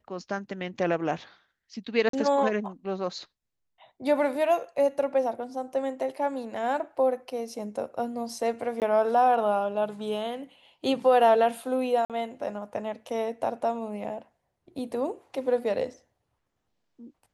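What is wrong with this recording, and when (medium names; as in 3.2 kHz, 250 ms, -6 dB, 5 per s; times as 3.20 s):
2.09–2.13 s: dropout 43 ms
8.80–8.82 s: dropout 18 ms
12.05–12.10 s: dropout 47 ms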